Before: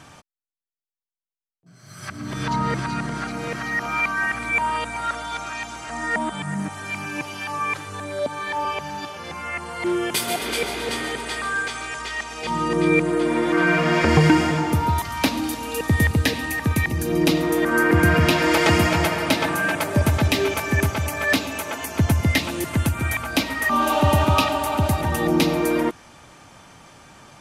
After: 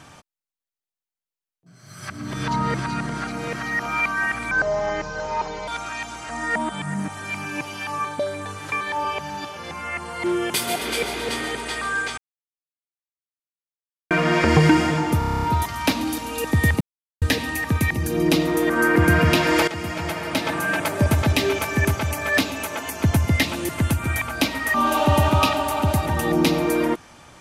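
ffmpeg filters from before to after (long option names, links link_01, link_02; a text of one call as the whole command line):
ffmpeg -i in.wav -filter_complex "[0:a]asplit=17[link_01][link_02][link_03][link_04][link_05][link_06][link_07][link_08][link_09][link_10][link_11][link_12][link_13][link_14][link_15][link_16][link_17];[link_01]atrim=end=4.514[link_18];[link_02]atrim=start=4.51:end=5.28,asetpts=PTS-STARTPTS,asetrate=29106,aresample=44100[link_19];[link_03]atrim=start=5.276:end=7.652[link_20];[link_04]atrim=start=7.648:end=8.412,asetpts=PTS-STARTPTS,areverse[link_21];[link_05]atrim=start=8.408:end=11.78,asetpts=PTS-STARTPTS,afade=type=out:start_time=3.368:duration=0.004:curve=hsin[link_22];[link_06]atrim=start=11.78:end=13.71,asetpts=PTS-STARTPTS,volume=0[link_23];[link_07]atrim=start=13.71:end=14.822,asetpts=PTS-STARTPTS,afade=type=in:duration=0.004:curve=hsin[link_24];[link_08]atrim=start=14.788:end=14.822[link_25];[link_09]atrim=start=14.788:end=14.822[link_26];[link_10]atrim=start=14.788:end=14.822[link_27];[link_11]atrim=start=14.788:end=14.822[link_28];[link_12]atrim=start=14.788:end=14.822[link_29];[link_13]atrim=start=14.788:end=14.822[link_30];[link_14]atrim=start=14.788:end=14.822[link_31];[link_15]atrim=start=14.788:end=16.17,asetpts=PTS-STARTPTS,afade=type=out:start_time=1.378:duration=0.004:curve=hsin,apad=pad_dur=0.41[link_32];[link_16]atrim=start=16.17:end=18.63,asetpts=PTS-STARTPTS,afade=type=in:duration=0.004:curve=hsin,afade=type=out:start_time=2.456:duration=0.004:curve=hsin:silence=0.158489[link_33];[link_17]atrim=start=18.63,asetpts=PTS-STARTPTS,afade=type=in:duration=1.15:silence=0.158489[link_34];[link_18][link_19]acrossfade=duration=0.004:curve1=hsin:curve2=hsin[link_35];[link_35][link_20]acrossfade=duration=0.004:curve1=hsin:curve2=hsin[link_36];[link_36][link_21]acrossfade=duration=0.004:curve1=hsin:curve2=hsin[link_37];[link_22][link_23][link_24]concat=n=3:v=0:a=1[link_38];[link_37][link_38]acrossfade=duration=0.004:curve1=hsin:curve2=hsin[link_39];[link_39][link_25]acrossfade=duration=0.004:curve1=hsin:curve2=hsin[link_40];[link_40][link_26]acrossfade=duration=0.004:curve1=hsin:curve2=hsin[link_41];[link_41][link_27]acrossfade=duration=0.004:curve1=hsin:curve2=hsin[link_42];[link_42][link_28]acrossfade=duration=0.004:curve1=hsin:curve2=hsin[link_43];[link_43][link_29]acrossfade=duration=0.004:curve1=hsin:curve2=hsin[link_44];[link_44][link_30]acrossfade=duration=0.004:curve1=hsin:curve2=hsin[link_45];[link_45][link_31]acrossfade=duration=0.004:curve1=hsin:curve2=hsin[link_46];[link_32][link_33][link_34]concat=n=3:v=0:a=1[link_47];[link_46][link_47]acrossfade=duration=0.004:curve1=hsin:curve2=hsin" out.wav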